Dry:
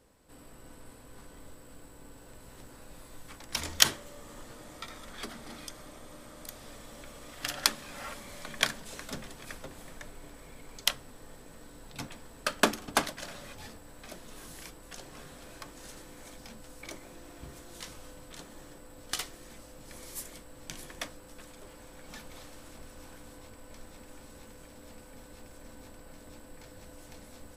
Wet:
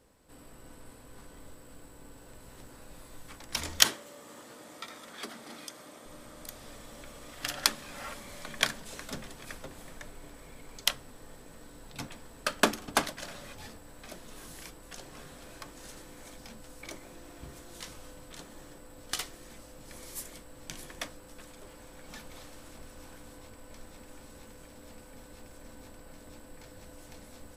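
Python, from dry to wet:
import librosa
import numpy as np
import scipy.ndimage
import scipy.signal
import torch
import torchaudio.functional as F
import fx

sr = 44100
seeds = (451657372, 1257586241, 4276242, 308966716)

y = fx.highpass(x, sr, hz=200.0, slope=12, at=(3.85, 6.06))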